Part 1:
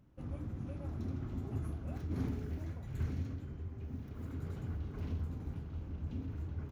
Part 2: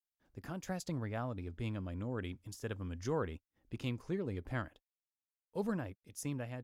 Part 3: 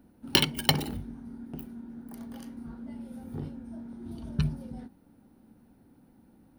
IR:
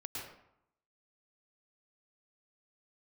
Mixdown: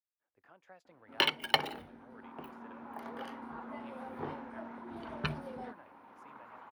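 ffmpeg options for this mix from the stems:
-filter_complex "[0:a]highpass=f=940:t=q:w=6.3,adelay=2050,volume=0.708,asplit=2[s0][s1];[s1]volume=0.668[s2];[1:a]volume=0.282[s3];[2:a]dynaudnorm=f=400:g=5:m=2.82,adynamicequalizer=threshold=0.00708:dfrequency=3700:dqfactor=0.7:tfrequency=3700:tqfactor=0.7:attack=5:release=100:ratio=0.375:range=3:mode=boostabove:tftype=highshelf,adelay=850,volume=1.12[s4];[3:a]atrim=start_sample=2205[s5];[s2][s5]afir=irnorm=-1:irlink=0[s6];[s0][s3][s4][s6]amix=inputs=4:normalize=0,highpass=68,acrossover=split=450 2900:gain=0.0794 1 0.0708[s7][s8][s9];[s7][s8][s9]amix=inputs=3:normalize=0"

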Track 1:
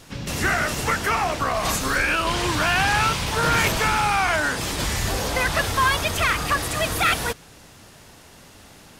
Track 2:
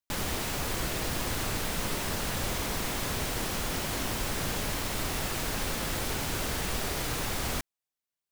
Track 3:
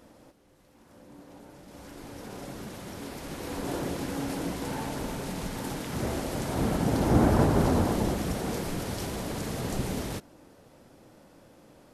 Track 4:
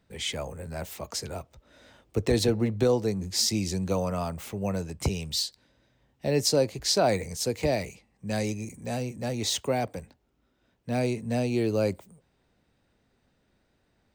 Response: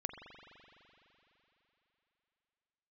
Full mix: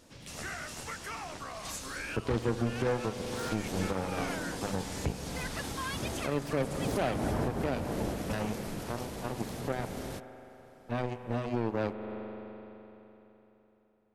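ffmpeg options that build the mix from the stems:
-filter_complex "[0:a]lowpass=9500,highshelf=f=4500:g=10.5,volume=0.106[s0];[2:a]volume=0.473[s1];[3:a]bass=f=250:g=4,treble=f=4000:g=-14,bandreject=f=50:t=h:w=6,bandreject=f=100:t=h:w=6,bandreject=f=150:t=h:w=6,bandreject=f=200:t=h:w=6,bandreject=f=250:t=h:w=6,aeval=exprs='0.282*(cos(1*acos(clip(val(0)/0.282,-1,1)))-cos(1*PI/2))+0.0447*(cos(7*acos(clip(val(0)/0.282,-1,1)))-cos(7*PI/2))':c=same,volume=0.794,asplit=2[s2][s3];[s3]volume=0.708[s4];[4:a]atrim=start_sample=2205[s5];[s4][s5]afir=irnorm=-1:irlink=0[s6];[s0][s1][s2][s6]amix=inputs=4:normalize=0,alimiter=limit=0.1:level=0:latency=1:release=265"

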